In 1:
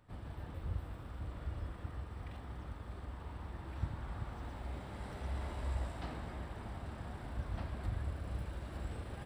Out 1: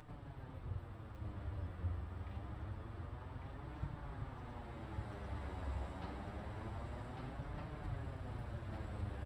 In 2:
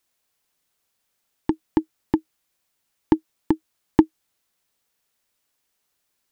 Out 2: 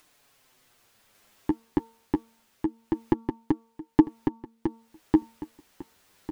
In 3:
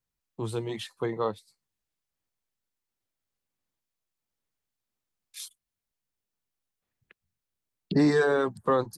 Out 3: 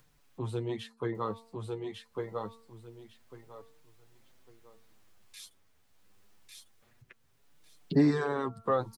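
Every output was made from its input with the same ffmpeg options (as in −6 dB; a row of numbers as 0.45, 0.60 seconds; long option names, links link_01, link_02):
-af "highshelf=frequency=3900:gain=-7.5,bandreject=frequency=227.3:width_type=h:width=4,bandreject=frequency=454.6:width_type=h:width=4,bandreject=frequency=681.9:width_type=h:width=4,bandreject=frequency=909.2:width_type=h:width=4,bandreject=frequency=1136.5:width_type=h:width=4,bandreject=frequency=1363.8:width_type=h:width=4,acompressor=mode=upward:threshold=-43dB:ratio=2.5,aecho=1:1:1150|2300|3450:0.708|0.156|0.0343,flanger=delay=6.5:depth=4.7:regen=16:speed=0.26:shape=triangular"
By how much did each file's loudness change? −3.0, −4.0, −5.5 LU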